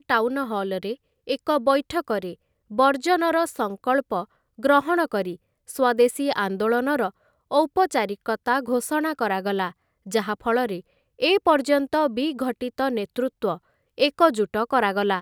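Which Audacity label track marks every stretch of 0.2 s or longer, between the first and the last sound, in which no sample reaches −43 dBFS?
0.950000	1.270000	silence
2.340000	2.710000	silence
4.250000	4.580000	silence
5.360000	5.680000	silence
7.100000	7.510000	silence
9.710000	10.060000	silence
10.810000	11.190000	silence
13.580000	13.980000	silence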